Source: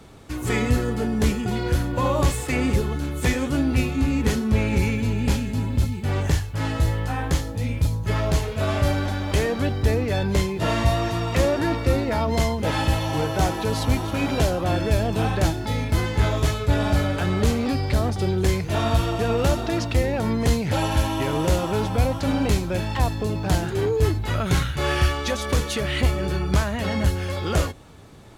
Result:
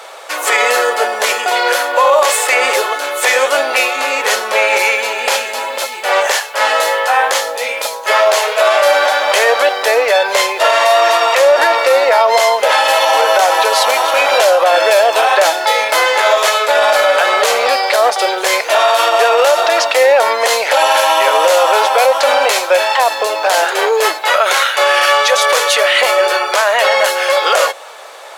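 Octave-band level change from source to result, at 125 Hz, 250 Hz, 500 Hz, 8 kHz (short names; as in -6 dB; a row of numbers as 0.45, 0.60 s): under -40 dB, -12.0 dB, +14.5 dB, +15.0 dB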